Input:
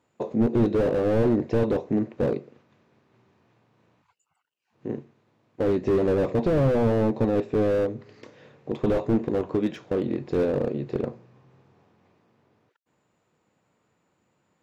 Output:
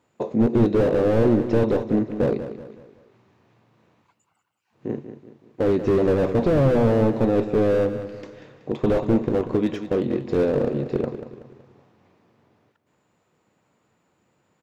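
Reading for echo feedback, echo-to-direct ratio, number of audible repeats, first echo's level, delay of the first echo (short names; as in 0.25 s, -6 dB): 42%, -10.0 dB, 4, -11.0 dB, 0.188 s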